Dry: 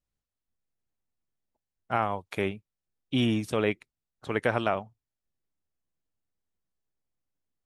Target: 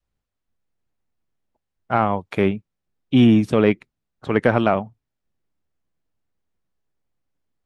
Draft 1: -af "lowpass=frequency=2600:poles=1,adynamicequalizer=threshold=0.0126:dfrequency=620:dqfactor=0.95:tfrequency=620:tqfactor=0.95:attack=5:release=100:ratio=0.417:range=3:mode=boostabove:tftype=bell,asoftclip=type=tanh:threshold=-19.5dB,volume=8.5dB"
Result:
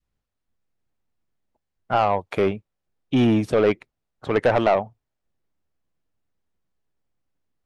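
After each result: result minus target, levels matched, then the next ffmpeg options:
soft clipping: distortion +16 dB; 250 Hz band −3.0 dB
-af "lowpass=frequency=2600:poles=1,adynamicequalizer=threshold=0.0126:dfrequency=620:dqfactor=0.95:tfrequency=620:tqfactor=0.95:attack=5:release=100:ratio=0.417:range=3:mode=boostabove:tftype=bell,asoftclip=type=tanh:threshold=-9dB,volume=8.5dB"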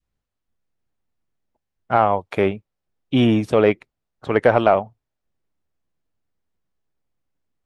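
250 Hz band −4.0 dB
-af "lowpass=frequency=2600:poles=1,adynamicequalizer=threshold=0.0126:dfrequency=200:dqfactor=0.95:tfrequency=200:tqfactor=0.95:attack=5:release=100:ratio=0.417:range=3:mode=boostabove:tftype=bell,asoftclip=type=tanh:threshold=-9dB,volume=8.5dB"

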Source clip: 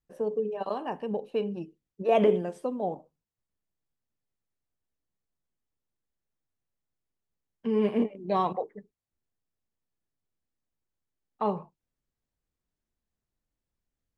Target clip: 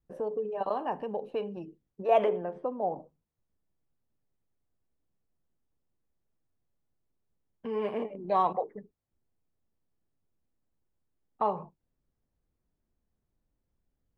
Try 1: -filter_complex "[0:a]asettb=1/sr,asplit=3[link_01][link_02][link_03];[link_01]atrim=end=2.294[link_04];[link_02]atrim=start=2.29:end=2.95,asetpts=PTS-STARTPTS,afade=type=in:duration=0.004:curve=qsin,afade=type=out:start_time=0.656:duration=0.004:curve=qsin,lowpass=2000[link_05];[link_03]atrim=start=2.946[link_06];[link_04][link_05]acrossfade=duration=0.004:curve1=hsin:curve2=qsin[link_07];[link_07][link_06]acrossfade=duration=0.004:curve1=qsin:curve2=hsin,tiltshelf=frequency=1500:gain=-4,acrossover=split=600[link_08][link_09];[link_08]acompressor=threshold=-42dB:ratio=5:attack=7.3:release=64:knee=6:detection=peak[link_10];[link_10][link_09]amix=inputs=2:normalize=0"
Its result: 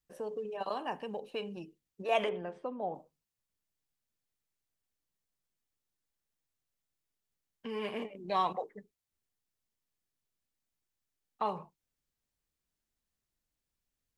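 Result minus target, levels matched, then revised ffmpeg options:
2,000 Hz band +9.0 dB
-filter_complex "[0:a]asettb=1/sr,asplit=3[link_01][link_02][link_03];[link_01]atrim=end=2.294[link_04];[link_02]atrim=start=2.29:end=2.95,asetpts=PTS-STARTPTS,afade=type=in:duration=0.004:curve=qsin,afade=type=out:start_time=0.656:duration=0.004:curve=qsin,lowpass=2000[link_05];[link_03]atrim=start=2.946[link_06];[link_04][link_05]acrossfade=duration=0.004:curve1=hsin:curve2=qsin[link_07];[link_07][link_06]acrossfade=duration=0.004:curve1=qsin:curve2=hsin,tiltshelf=frequency=1500:gain=7.5,acrossover=split=600[link_08][link_09];[link_08]acompressor=threshold=-42dB:ratio=5:attack=7.3:release=64:knee=6:detection=peak[link_10];[link_10][link_09]amix=inputs=2:normalize=0"

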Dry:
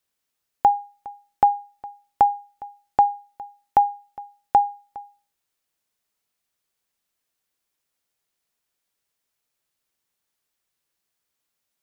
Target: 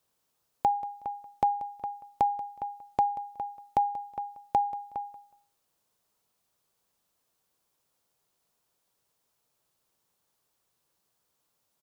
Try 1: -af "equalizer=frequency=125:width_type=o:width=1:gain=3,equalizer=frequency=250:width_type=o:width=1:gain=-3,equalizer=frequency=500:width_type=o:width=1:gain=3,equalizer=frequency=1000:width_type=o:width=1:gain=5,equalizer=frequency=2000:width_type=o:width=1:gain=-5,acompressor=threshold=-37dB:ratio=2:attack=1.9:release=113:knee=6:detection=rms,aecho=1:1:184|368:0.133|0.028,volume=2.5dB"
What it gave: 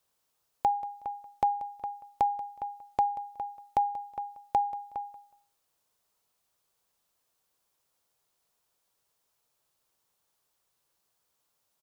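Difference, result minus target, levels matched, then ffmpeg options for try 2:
250 Hz band −3.5 dB
-af "equalizer=frequency=125:width_type=o:width=1:gain=3,equalizer=frequency=250:width_type=o:width=1:gain=-3,equalizer=frequency=500:width_type=o:width=1:gain=3,equalizer=frequency=1000:width_type=o:width=1:gain=5,equalizer=frequency=2000:width_type=o:width=1:gain=-5,acompressor=threshold=-37dB:ratio=2:attack=1.9:release=113:knee=6:detection=rms,equalizer=frequency=200:width=0.58:gain=5,aecho=1:1:184|368:0.133|0.028,volume=2.5dB"

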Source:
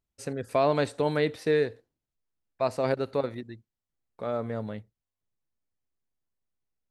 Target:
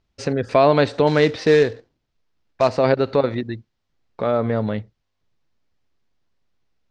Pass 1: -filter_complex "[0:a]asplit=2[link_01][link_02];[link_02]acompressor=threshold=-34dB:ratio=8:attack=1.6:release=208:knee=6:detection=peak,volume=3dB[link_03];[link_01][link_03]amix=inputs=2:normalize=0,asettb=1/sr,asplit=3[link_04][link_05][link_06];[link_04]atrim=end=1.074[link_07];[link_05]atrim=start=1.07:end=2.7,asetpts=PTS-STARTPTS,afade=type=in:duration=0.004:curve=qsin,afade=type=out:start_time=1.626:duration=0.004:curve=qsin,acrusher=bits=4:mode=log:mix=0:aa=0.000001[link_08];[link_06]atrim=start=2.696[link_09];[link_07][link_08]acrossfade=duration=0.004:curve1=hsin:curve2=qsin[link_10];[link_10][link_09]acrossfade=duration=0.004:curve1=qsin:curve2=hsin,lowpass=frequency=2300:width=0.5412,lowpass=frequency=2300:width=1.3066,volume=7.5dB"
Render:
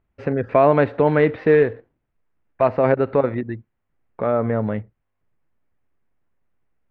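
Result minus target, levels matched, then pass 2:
4,000 Hz band −15.0 dB
-filter_complex "[0:a]asplit=2[link_01][link_02];[link_02]acompressor=threshold=-34dB:ratio=8:attack=1.6:release=208:knee=6:detection=peak,volume=3dB[link_03];[link_01][link_03]amix=inputs=2:normalize=0,asettb=1/sr,asplit=3[link_04][link_05][link_06];[link_04]atrim=end=1.074[link_07];[link_05]atrim=start=1.07:end=2.7,asetpts=PTS-STARTPTS,afade=type=in:duration=0.004:curve=qsin,afade=type=out:start_time=1.626:duration=0.004:curve=qsin,acrusher=bits=4:mode=log:mix=0:aa=0.000001[link_08];[link_06]atrim=start=2.696[link_09];[link_07][link_08]acrossfade=duration=0.004:curve1=hsin:curve2=qsin[link_10];[link_10][link_09]acrossfade=duration=0.004:curve1=qsin:curve2=hsin,lowpass=frequency=5500:width=0.5412,lowpass=frequency=5500:width=1.3066,volume=7.5dB"

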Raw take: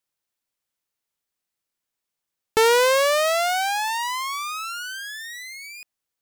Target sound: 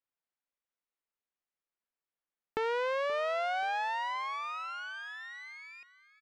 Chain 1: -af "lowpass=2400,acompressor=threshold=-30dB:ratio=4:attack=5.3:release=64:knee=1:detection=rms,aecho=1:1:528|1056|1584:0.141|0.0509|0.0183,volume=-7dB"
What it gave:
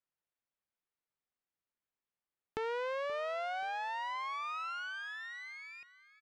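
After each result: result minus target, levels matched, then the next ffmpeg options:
downward compressor: peak gain reduction +5.5 dB; 125 Hz band +5.0 dB
-af "lowpass=2400,acompressor=threshold=-22.5dB:ratio=4:attack=5.3:release=64:knee=1:detection=rms,aecho=1:1:528|1056|1584:0.141|0.0509|0.0183,volume=-7dB"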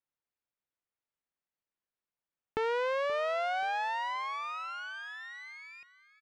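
125 Hz band +4.5 dB
-af "lowpass=2400,equalizer=frequency=110:width=1.1:gain=-13,acompressor=threshold=-22.5dB:ratio=4:attack=5.3:release=64:knee=1:detection=rms,aecho=1:1:528|1056|1584:0.141|0.0509|0.0183,volume=-7dB"

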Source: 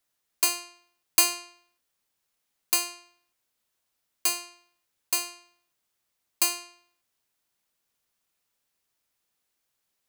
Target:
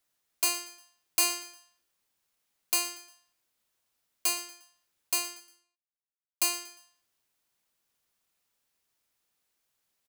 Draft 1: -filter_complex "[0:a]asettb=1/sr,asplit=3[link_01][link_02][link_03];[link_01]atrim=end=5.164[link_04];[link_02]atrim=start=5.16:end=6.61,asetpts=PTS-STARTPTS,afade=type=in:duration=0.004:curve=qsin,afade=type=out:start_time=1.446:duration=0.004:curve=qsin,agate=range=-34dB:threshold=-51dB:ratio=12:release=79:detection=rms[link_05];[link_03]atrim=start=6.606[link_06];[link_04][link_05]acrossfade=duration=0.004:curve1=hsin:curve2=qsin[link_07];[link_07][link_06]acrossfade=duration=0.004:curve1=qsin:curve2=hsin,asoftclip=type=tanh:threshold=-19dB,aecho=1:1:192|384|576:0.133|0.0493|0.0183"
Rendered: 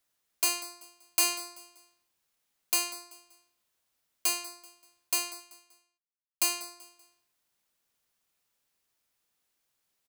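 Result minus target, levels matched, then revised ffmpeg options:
echo 74 ms late
-filter_complex "[0:a]asettb=1/sr,asplit=3[link_01][link_02][link_03];[link_01]atrim=end=5.164[link_04];[link_02]atrim=start=5.16:end=6.61,asetpts=PTS-STARTPTS,afade=type=in:duration=0.004:curve=qsin,afade=type=out:start_time=1.446:duration=0.004:curve=qsin,agate=range=-34dB:threshold=-51dB:ratio=12:release=79:detection=rms[link_05];[link_03]atrim=start=6.606[link_06];[link_04][link_05]acrossfade=duration=0.004:curve1=hsin:curve2=qsin[link_07];[link_07][link_06]acrossfade=duration=0.004:curve1=qsin:curve2=hsin,asoftclip=type=tanh:threshold=-19dB,aecho=1:1:118|236|354:0.133|0.0493|0.0183"

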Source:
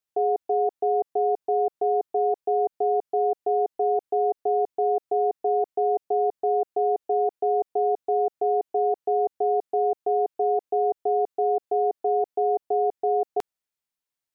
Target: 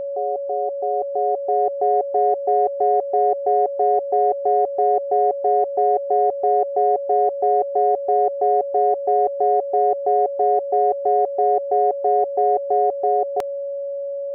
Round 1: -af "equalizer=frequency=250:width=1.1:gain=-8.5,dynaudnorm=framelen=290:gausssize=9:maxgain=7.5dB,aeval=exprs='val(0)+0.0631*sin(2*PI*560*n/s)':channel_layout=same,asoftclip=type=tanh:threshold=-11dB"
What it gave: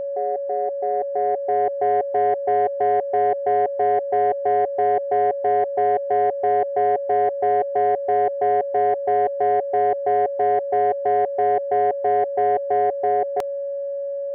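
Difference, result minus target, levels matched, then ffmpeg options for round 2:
soft clipping: distortion +18 dB
-af "equalizer=frequency=250:width=1.1:gain=-8.5,dynaudnorm=framelen=290:gausssize=9:maxgain=7.5dB,aeval=exprs='val(0)+0.0631*sin(2*PI*560*n/s)':channel_layout=same,asoftclip=type=tanh:threshold=-1dB"

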